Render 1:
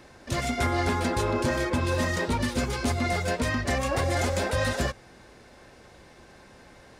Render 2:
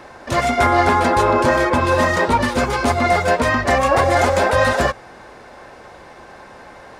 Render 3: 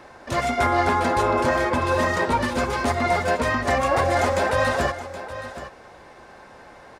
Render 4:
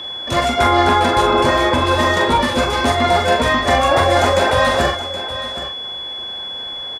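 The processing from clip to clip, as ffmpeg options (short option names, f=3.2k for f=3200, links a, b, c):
-af "equalizer=f=930:w=0.53:g=11.5,volume=4dB"
-af "aecho=1:1:772:0.224,volume=-5.5dB"
-filter_complex "[0:a]aeval=exprs='val(0)+0.0224*sin(2*PI*3400*n/s)':c=same,asplit=2[a][b];[b]adelay=43,volume=-6dB[c];[a][c]amix=inputs=2:normalize=0,volume=5.5dB"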